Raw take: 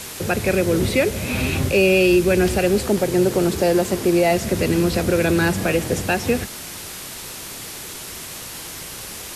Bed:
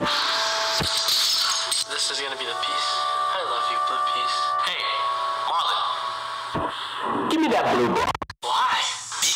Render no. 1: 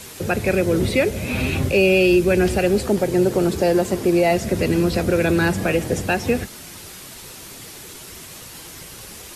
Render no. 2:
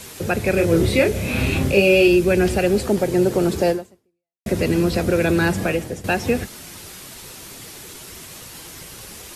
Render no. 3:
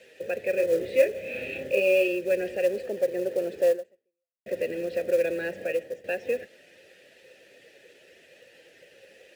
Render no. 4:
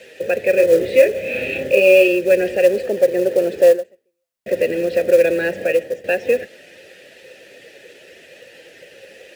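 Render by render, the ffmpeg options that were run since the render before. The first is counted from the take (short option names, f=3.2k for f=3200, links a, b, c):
-af "afftdn=nr=6:nf=-34"
-filter_complex "[0:a]asettb=1/sr,asplit=3[a][b][c];[a]atrim=end=0.544[d];[b]atrim=start=0.54:end=2.08,asetpts=PTS-STARTPTS,afade=t=in:d=0.004:c=qsin,afade=t=out:st=1.536:d=0.004:c=qsin,asplit=2[e][f];[f]adelay=30,volume=-4dB[g];[e][g]amix=inputs=2:normalize=0,atrim=end_sample=67914[h];[c]atrim=start=2.076[i];[d][h]acrossfade=d=0.004:c1=hsin:c2=qsin[j];[j][i]acrossfade=d=0.004:c1=qsin:c2=hsin,asplit=3[k][l][m];[k]atrim=end=4.46,asetpts=PTS-STARTPTS,afade=t=out:st=3.7:d=0.76:c=exp[n];[l]atrim=start=4.46:end=6.04,asetpts=PTS-STARTPTS,afade=t=in:d=0.004:c=hsin,afade=t=out:st=1.17:d=0.41:silence=0.223872[o];[m]atrim=start=6.04,asetpts=PTS-STARTPTS,afade=t=in:d=0.004:c=hsin:silence=0.223872[p];[n][o][p]concat=n=3:v=0:a=1"
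-filter_complex "[0:a]asplit=3[a][b][c];[a]bandpass=f=530:t=q:w=8,volume=0dB[d];[b]bandpass=f=1.84k:t=q:w=8,volume=-6dB[e];[c]bandpass=f=2.48k:t=q:w=8,volume=-9dB[f];[d][e][f]amix=inputs=3:normalize=0,acrusher=bits=6:mode=log:mix=0:aa=0.000001"
-af "volume=11dB,alimiter=limit=-2dB:level=0:latency=1"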